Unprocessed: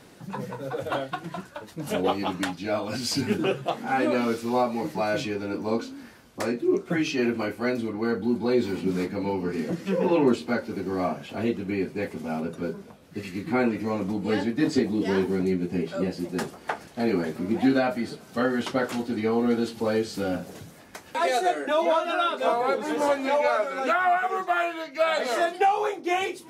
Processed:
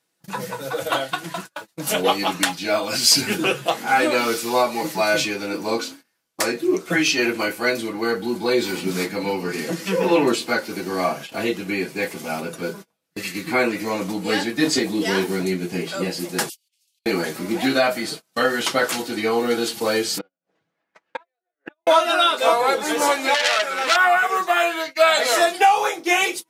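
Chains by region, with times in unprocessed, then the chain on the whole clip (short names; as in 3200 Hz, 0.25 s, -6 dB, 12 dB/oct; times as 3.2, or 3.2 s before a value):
16.49–17.06 steep high-pass 2700 Hz 48 dB/oct + negative-ratio compressor -53 dBFS, ratio -0.5
20.18–21.87 LPF 2100 Hz + flipped gate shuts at -20 dBFS, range -34 dB + low shelf 130 Hz -9.5 dB
23.34–23.96 short-mantissa float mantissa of 8-bit + core saturation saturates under 3000 Hz
whole clip: gate -38 dBFS, range -31 dB; tilt +3 dB/oct; comb 6.1 ms, depth 36%; gain +6.5 dB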